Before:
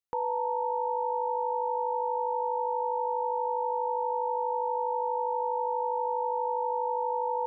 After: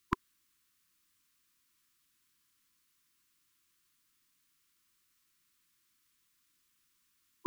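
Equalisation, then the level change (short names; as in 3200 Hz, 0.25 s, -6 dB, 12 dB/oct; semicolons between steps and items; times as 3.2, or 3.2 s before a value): brick-wall FIR band-stop 360–1000 Hz; band shelf 530 Hz +9 dB 1.1 oct; +18.0 dB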